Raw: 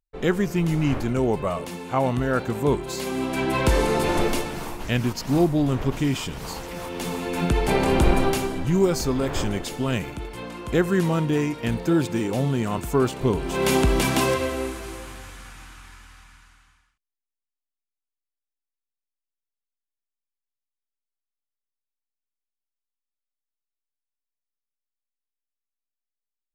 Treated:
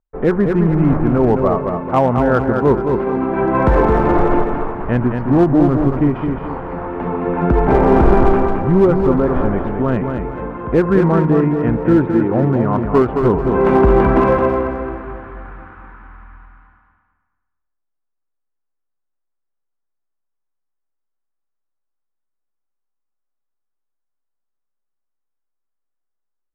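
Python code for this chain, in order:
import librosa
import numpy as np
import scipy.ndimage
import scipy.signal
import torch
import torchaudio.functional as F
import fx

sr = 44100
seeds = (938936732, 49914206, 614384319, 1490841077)

p1 = scipy.signal.sosfilt(scipy.signal.butter(4, 1500.0, 'lowpass', fs=sr, output='sos'), x)
p2 = fx.peak_eq(p1, sr, hz=92.0, db=-3.5, octaves=1.9)
p3 = 10.0 ** (-16.5 / 20.0) * (np.abs((p2 / 10.0 ** (-16.5 / 20.0) + 3.0) % 4.0 - 2.0) - 1.0)
p4 = p2 + F.gain(torch.from_numpy(p3), -5.5).numpy()
p5 = fx.echo_feedback(p4, sr, ms=217, feedback_pct=35, wet_db=-5.5)
p6 = fx.end_taper(p5, sr, db_per_s=190.0)
y = F.gain(torch.from_numpy(p6), 5.5).numpy()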